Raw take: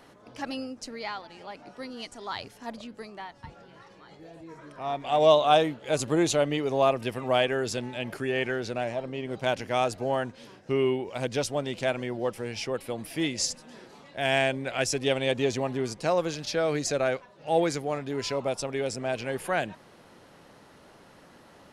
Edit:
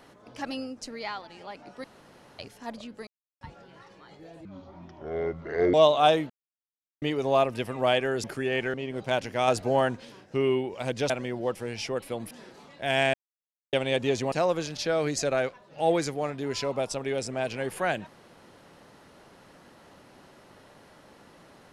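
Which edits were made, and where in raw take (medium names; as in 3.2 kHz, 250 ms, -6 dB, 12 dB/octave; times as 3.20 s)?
1.84–2.39 s: room tone
3.07–3.41 s: mute
4.45–5.21 s: speed 59%
5.77–6.49 s: mute
7.71–8.07 s: delete
8.57–9.09 s: delete
9.83–10.40 s: gain +4 dB
11.45–11.88 s: delete
13.09–13.66 s: delete
14.49–15.08 s: mute
15.67–16.00 s: delete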